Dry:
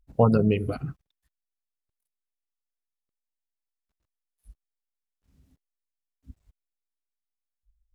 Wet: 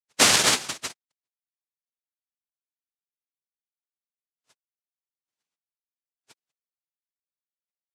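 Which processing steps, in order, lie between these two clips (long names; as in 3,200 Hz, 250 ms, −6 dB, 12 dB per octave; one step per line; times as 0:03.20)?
spectral dynamics exaggerated over time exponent 2
cochlear-implant simulation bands 1
level +3.5 dB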